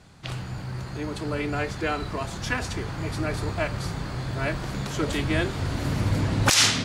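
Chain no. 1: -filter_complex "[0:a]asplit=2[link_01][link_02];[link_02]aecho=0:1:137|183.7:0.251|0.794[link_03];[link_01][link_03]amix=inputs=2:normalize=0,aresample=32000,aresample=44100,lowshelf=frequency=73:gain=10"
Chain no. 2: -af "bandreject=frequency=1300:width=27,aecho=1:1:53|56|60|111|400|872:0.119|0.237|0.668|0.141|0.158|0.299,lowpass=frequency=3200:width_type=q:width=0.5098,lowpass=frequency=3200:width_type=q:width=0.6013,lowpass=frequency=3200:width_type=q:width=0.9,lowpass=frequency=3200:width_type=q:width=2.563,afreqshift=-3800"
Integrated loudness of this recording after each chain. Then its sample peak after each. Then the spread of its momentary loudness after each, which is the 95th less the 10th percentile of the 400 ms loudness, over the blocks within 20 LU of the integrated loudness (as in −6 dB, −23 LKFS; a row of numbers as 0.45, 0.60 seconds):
−24.0, −22.5 LKFS; −4.0, −8.0 dBFS; 10, 11 LU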